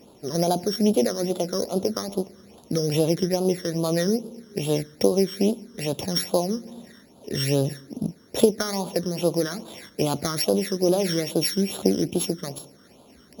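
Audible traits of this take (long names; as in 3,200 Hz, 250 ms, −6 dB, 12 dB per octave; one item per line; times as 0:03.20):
a buzz of ramps at a fixed pitch in blocks of 8 samples
phaser sweep stages 12, 2.4 Hz, lowest notch 770–1,900 Hz
Ogg Vorbis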